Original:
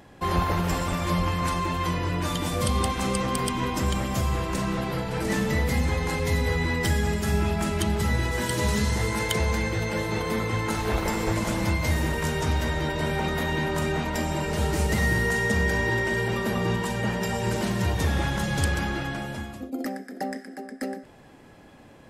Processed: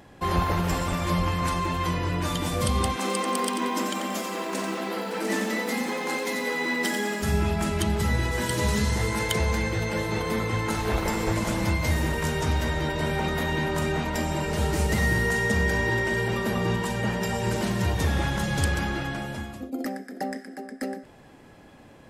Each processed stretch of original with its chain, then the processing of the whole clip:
2.96–7.22 s: brick-wall FIR high-pass 190 Hz + bit-crushed delay 90 ms, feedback 35%, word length 8-bit, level -6.5 dB
whole clip: none

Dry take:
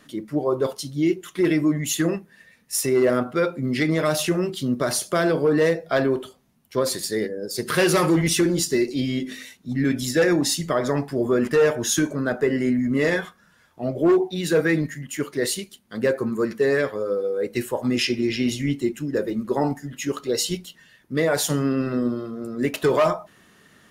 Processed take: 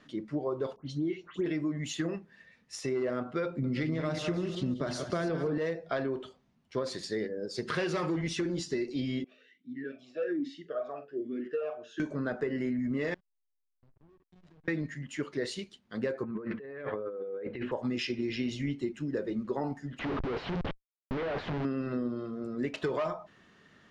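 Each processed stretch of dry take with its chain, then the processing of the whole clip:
0.76–1.46 s: distance through air 90 m + band-stop 5.1 kHz, Q 6.1 + phase dispersion highs, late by 119 ms, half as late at 2.2 kHz
3.45–5.58 s: chunks repeated in reverse 184 ms, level -9 dB + bass shelf 230 Hz +8.5 dB + delay 189 ms -12.5 dB
9.24–12.00 s: doubling 44 ms -10 dB + talking filter a-i 1.2 Hz
13.14–14.68 s: amplifier tone stack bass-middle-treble 6-0-2 + compression, threshold -45 dBFS + hysteresis with a dead band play -39.5 dBFS
16.23–17.72 s: low-pass 2.9 kHz 24 dB/octave + hum notches 50/100/150/200/250 Hz + compressor with a negative ratio -32 dBFS
19.99–21.65 s: Schmitt trigger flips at -37 dBFS + distance through air 380 m + loudspeaker Doppler distortion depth 0.64 ms
whole clip: compression, threshold -23 dBFS; Bessel low-pass 4.5 kHz, order 4; trim -5.5 dB

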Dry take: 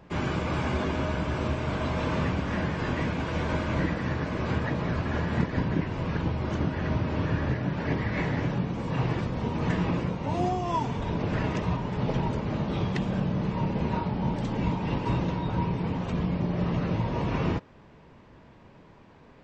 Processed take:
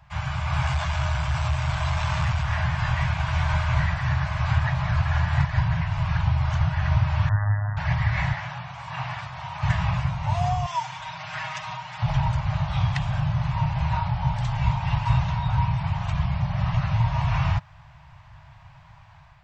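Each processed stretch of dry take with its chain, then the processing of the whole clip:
0.66–2.44 s: treble shelf 5.6 kHz +9.5 dB + transformer saturation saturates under 290 Hz
7.29–7.77 s: brick-wall FIR low-pass 2 kHz + robot voice 103 Hz
8.33–9.63 s: high-pass 580 Hz 6 dB/octave + treble shelf 5.5 kHz -6 dB
10.66–12.02 s: high-pass 1.4 kHz 6 dB/octave + comb 6.4 ms, depth 73%
whole clip: inverse Chebyshev band-stop 210–480 Hz, stop band 40 dB; peaking EQ 81 Hz +4.5 dB 2.6 oct; level rider gain up to 5 dB

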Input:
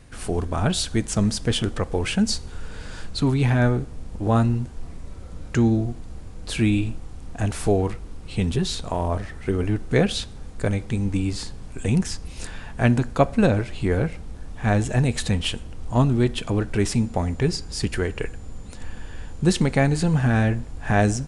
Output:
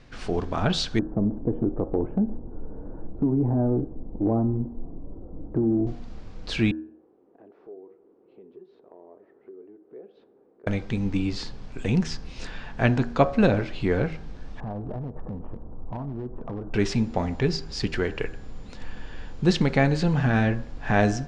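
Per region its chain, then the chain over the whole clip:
0.99–5.87 s: inverse Chebyshev low-pass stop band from 4.7 kHz, stop band 80 dB + peaking EQ 310 Hz +9.5 dB 0.57 oct + compression, threshold -17 dBFS
6.71–10.67 s: ladder band-pass 420 Hz, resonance 65% + compression 2:1, threshold -53 dBFS
14.60–16.74 s: steep low-pass 1.1 kHz + compression 12:1, threshold -26 dBFS + hard clipper -25.5 dBFS
whole clip: low-pass 5.5 kHz 24 dB/octave; peaking EQ 72 Hz -7.5 dB 1.3 oct; de-hum 79.01 Hz, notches 22

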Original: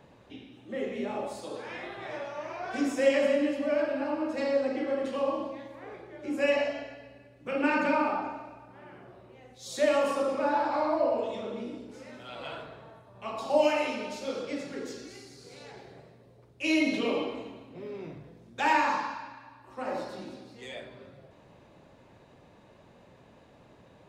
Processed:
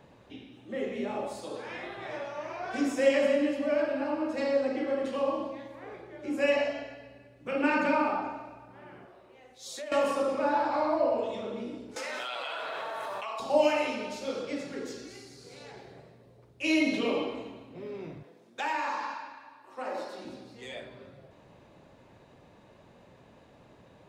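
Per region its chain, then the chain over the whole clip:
9.05–9.92 s: peaking EQ 110 Hz -13 dB 2.3 oct + compression, threshold -37 dBFS
11.96–13.40 s: high-pass 750 Hz + level flattener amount 100%
18.23–20.25 s: high-pass 320 Hz + compression 2.5:1, threshold -30 dBFS
whole clip: none

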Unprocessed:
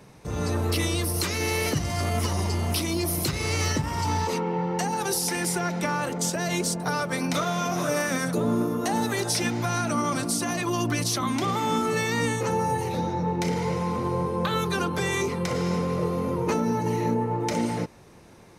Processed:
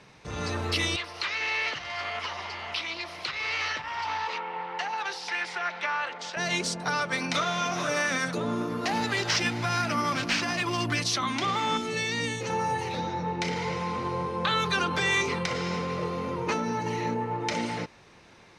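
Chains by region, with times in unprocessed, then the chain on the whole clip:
0.96–6.37 s: three-band isolator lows -18 dB, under 570 Hz, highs -20 dB, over 4.3 kHz + loudspeaker Doppler distortion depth 0.17 ms
8.69–11.00 s: high-pass 41 Hz + bass shelf 95 Hz +9.5 dB + careless resampling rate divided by 4×, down none, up hold
11.77–12.50 s: high-pass 45 Hz + peaking EQ 1.2 kHz -11 dB 1.3 oct
14.47–15.46 s: hum notches 50/100/150/200/250/300/350/400/450 Hz + level flattener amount 70%
whole clip: low-pass 4 kHz 12 dB/octave; tilt shelf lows -7 dB, about 1.1 kHz

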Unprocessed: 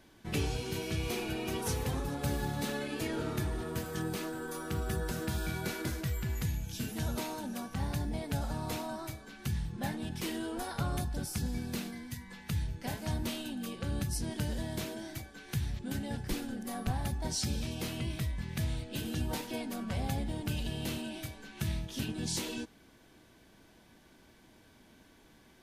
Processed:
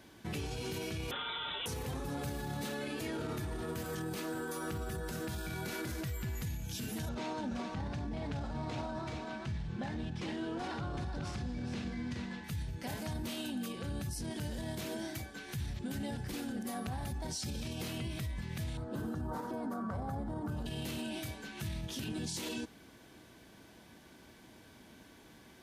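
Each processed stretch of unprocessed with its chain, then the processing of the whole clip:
1.11–1.66 s: tilt EQ +3 dB/octave + frequency inversion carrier 3.8 kHz
7.09–12.44 s: CVSD coder 64 kbps + distance through air 130 m + delay 421 ms -7.5 dB
18.77–20.66 s: high-pass 46 Hz + resonant high shelf 1.8 kHz -12.5 dB, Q 3
whole clip: peak limiter -34 dBFS; high-pass 54 Hz; trim +3.5 dB

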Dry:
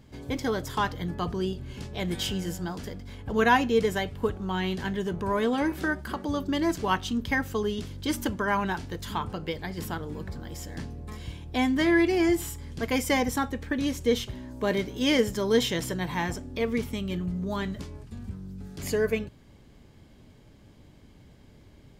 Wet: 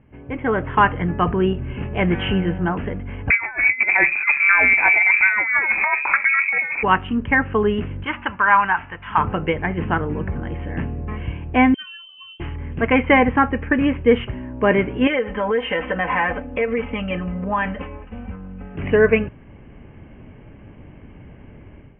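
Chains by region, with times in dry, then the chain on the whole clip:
3.30–6.83 s: frequency inversion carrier 2.5 kHz + compressor with a negative ratio -29 dBFS, ratio -0.5
8.04–9.18 s: CVSD coder 64 kbps + resonant low shelf 650 Hz -11.5 dB, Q 1.5
11.74–12.40 s: spectral contrast enhancement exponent 1.9 + inharmonic resonator 140 Hz, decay 0.48 s, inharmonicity 0.03 + frequency inversion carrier 3.4 kHz
15.07–18.75 s: resonant low shelf 380 Hz -7 dB, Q 1.5 + comb 3.9 ms, depth 87% + compression 4:1, threshold -30 dBFS
whole clip: dynamic bell 1.4 kHz, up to +4 dB, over -41 dBFS, Q 0.76; level rider gain up to 11.5 dB; steep low-pass 2.9 kHz 96 dB/octave

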